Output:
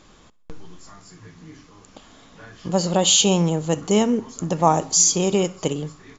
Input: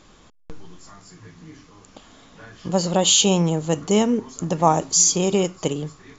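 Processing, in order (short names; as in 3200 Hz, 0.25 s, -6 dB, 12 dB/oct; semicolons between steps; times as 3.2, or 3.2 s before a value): feedback echo 64 ms, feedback 53%, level -23 dB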